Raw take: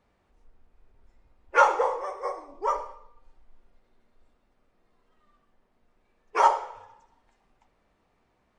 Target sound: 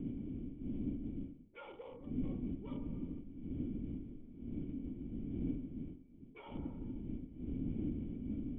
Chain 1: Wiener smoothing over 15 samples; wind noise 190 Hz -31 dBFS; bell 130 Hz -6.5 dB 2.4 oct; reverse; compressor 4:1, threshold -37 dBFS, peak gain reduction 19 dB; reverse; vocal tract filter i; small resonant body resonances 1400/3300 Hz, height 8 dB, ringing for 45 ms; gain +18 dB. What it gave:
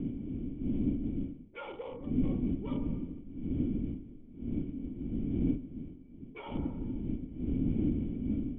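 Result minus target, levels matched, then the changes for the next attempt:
compressor: peak gain reduction -8.5 dB
change: compressor 4:1, threshold -48.5 dBFS, peak gain reduction 28 dB

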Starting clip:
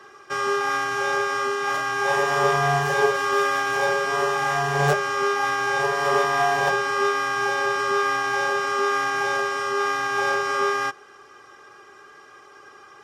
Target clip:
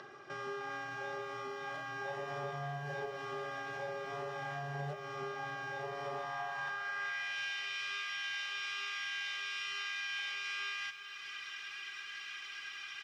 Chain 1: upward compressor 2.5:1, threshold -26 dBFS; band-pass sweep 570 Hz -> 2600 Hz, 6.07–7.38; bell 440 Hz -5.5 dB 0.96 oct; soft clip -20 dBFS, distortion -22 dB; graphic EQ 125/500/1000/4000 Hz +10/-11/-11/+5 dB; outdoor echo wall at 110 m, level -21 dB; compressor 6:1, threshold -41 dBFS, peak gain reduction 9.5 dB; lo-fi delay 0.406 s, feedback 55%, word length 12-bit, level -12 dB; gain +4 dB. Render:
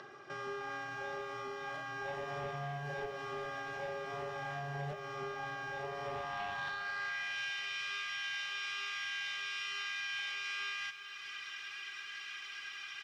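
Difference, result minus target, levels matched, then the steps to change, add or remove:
soft clip: distortion +21 dB
change: soft clip -8.5 dBFS, distortion -43 dB

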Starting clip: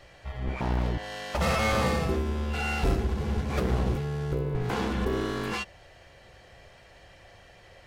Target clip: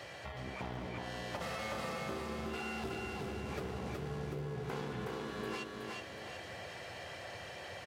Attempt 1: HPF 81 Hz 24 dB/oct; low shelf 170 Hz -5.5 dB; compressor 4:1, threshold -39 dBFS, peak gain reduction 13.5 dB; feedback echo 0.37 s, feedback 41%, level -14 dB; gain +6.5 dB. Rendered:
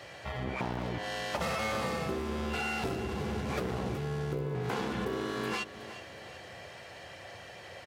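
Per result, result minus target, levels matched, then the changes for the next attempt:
compressor: peak gain reduction -8.5 dB; echo-to-direct -11.5 dB
change: compressor 4:1, threshold -50.5 dBFS, peak gain reduction 22 dB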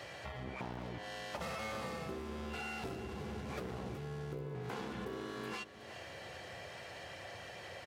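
echo-to-direct -11.5 dB
change: feedback echo 0.37 s, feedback 41%, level -2.5 dB

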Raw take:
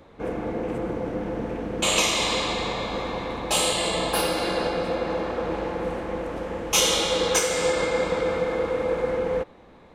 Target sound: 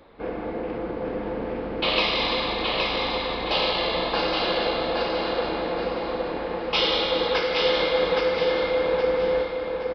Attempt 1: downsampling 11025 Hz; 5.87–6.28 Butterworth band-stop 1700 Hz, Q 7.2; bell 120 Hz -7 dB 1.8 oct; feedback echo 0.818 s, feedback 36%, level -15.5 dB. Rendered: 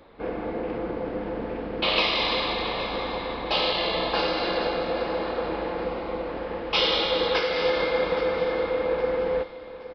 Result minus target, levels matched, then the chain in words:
echo-to-direct -11.5 dB
downsampling 11025 Hz; 5.87–6.28 Butterworth band-stop 1700 Hz, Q 7.2; bell 120 Hz -7 dB 1.8 oct; feedback echo 0.818 s, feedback 36%, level -4 dB

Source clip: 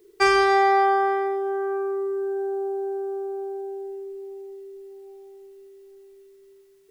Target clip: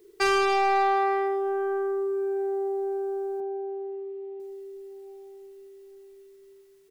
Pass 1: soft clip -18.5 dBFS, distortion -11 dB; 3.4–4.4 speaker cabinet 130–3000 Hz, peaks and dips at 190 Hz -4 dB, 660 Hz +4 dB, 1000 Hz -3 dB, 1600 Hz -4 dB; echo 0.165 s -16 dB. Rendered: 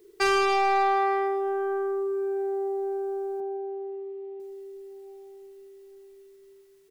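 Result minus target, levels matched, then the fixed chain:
echo-to-direct +10.5 dB
soft clip -18.5 dBFS, distortion -11 dB; 3.4–4.4 speaker cabinet 130–3000 Hz, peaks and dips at 190 Hz -4 dB, 660 Hz +4 dB, 1000 Hz -3 dB, 1600 Hz -4 dB; echo 0.165 s -26.5 dB

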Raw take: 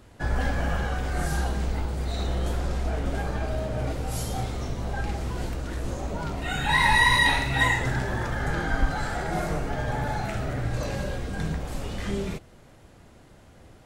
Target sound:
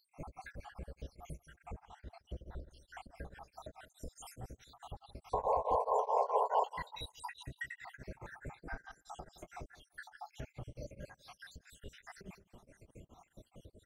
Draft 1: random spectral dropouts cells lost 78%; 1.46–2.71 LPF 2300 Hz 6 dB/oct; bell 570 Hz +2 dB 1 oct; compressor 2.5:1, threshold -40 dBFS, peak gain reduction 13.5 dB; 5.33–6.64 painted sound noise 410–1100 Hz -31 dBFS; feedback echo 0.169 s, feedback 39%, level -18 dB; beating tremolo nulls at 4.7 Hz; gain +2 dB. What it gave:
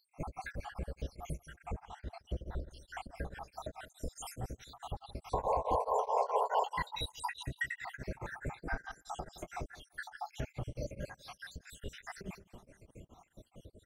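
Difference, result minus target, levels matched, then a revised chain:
compressor: peak gain reduction -6.5 dB
random spectral dropouts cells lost 78%; 1.46–2.71 LPF 2300 Hz 6 dB/oct; bell 570 Hz +2 dB 1 oct; compressor 2.5:1, threshold -51 dBFS, peak gain reduction 20.5 dB; 5.33–6.64 painted sound noise 410–1100 Hz -31 dBFS; feedback echo 0.169 s, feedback 39%, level -18 dB; beating tremolo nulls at 4.7 Hz; gain +2 dB

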